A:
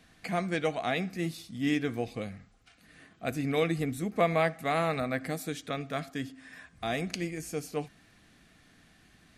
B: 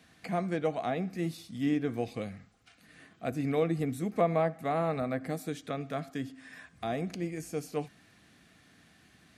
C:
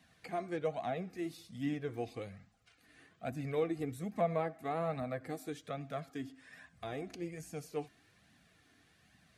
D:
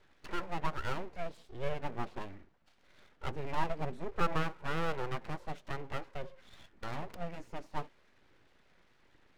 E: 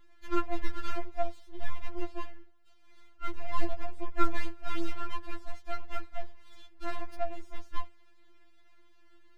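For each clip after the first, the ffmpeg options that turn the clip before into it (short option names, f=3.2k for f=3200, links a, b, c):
-filter_complex "[0:a]acrossover=split=1200[a][b];[a]highpass=75[c];[b]acompressor=threshold=-45dB:ratio=6[d];[c][d]amix=inputs=2:normalize=0"
-af "flanger=delay=1:depth=2:regen=-22:speed=1.2:shape=triangular,volume=-2.5dB"
-af "adynamicsmooth=sensitivity=6.5:basefreq=2.6k,aeval=exprs='abs(val(0))':c=same,volume=4.5dB"
-af "afftfilt=real='re*4*eq(mod(b,16),0)':imag='im*4*eq(mod(b,16),0)':win_size=2048:overlap=0.75,volume=3dB"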